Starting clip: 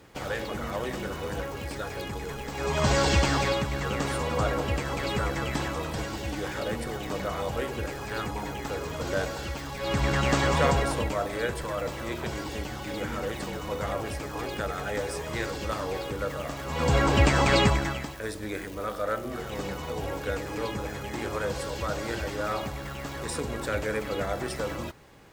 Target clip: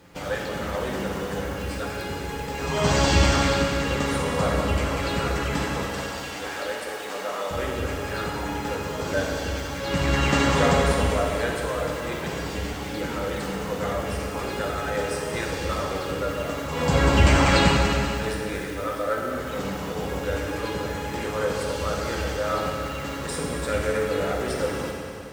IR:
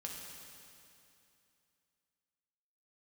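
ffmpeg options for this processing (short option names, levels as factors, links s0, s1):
-filter_complex "[0:a]asettb=1/sr,asplit=3[s0][s1][s2];[s0]atrim=end=5.854[s3];[s1]atrim=start=5.85:end=7.51,asetpts=PTS-STARTPTS,afade=t=in:d=0.004:c=qsin,afade=t=out:st=1.656:d=0.004:c=qsin,highpass=490[s4];[s2]atrim=start=7.506[s5];[s3][s4]acrossfade=d=0.004:c1=hsin:c2=qsin[s6];[s6][s5]acrossfade=d=0.004:c1=qsin:c2=hsin[s7];[1:a]atrim=start_sample=2205[s8];[s7][s8]afir=irnorm=-1:irlink=0,volume=1.88"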